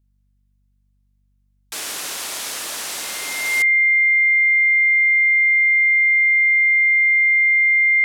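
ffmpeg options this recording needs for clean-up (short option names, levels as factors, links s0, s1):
-af "bandreject=f=48.5:t=h:w=4,bandreject=f=97:t=h:w=4,bandreject=f=145.5:t=h:w=4,bandreject=f=194:t=h:w=4,bandreject=f=242.5:t=h:w=4,bandreject=f=2100:w=30"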